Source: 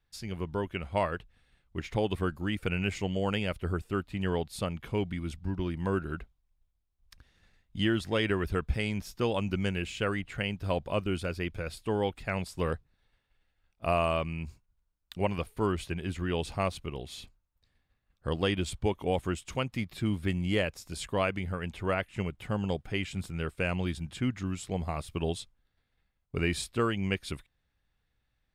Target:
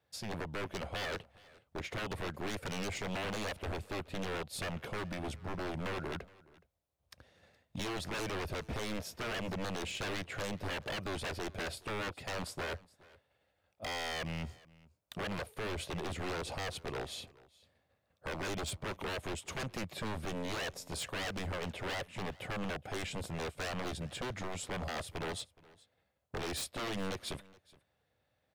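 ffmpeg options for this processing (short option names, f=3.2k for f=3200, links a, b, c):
-af "highpass=f=75:w=0.5412,highpass=f=75:w=1.3066,equalizer=f=580:t=o:w=0.93:g=13.5,alimiter=limit=-19.5dB:level=0:latency=1:release=86,aeval=exprs='0.0237*(abs(mod(val(0)/0.0237+3,4)-2)-1)':c=same,aecho=1:1:420:0.0708"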